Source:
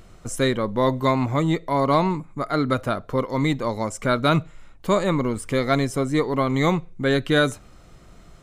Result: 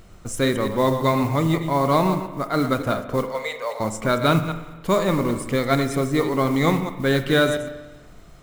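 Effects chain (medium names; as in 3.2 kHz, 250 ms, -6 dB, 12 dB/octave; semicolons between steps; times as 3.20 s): chunks repeated in reverse 113 ms, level -9 dB; 3.29–3.80 s: rippled Chebyshev high-pass 440 Hz, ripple 3 dB; modulation noise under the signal 24 dB; spring tank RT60 1.3 s, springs 37/42 ms, chirp 70 ms, DRR 10 dB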